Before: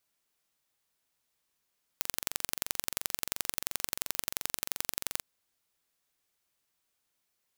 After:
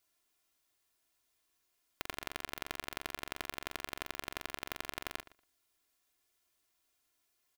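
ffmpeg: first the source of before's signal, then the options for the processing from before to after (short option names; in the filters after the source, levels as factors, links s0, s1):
-f lavfi -i "aevalsrc='0.794*eq(mod(n,1926),0)*(0.5+0.5*eq(mod(n,3852),0))':d=3.23:s=44100"
-filter_complex "[0:a]acrossover=split=3500[s0][s1];[s1]acompressor=threshold=0.0112:ratio=4:attack=1:release=60[s2];[s0][s2]amix=inputs=2:normalize=0,aecho=1:1:2.9:0.55,asplit=2[s3][s4];[s4]adelay=118,lowpass=f=3500:p=1,volume=0.158,asplit=2[s5][s6];[s6]adelay=118,lowpass=f=3500:p=1,volume=0.16[s7];[s3][s5][s7]amix=inputs=3:normalize=0"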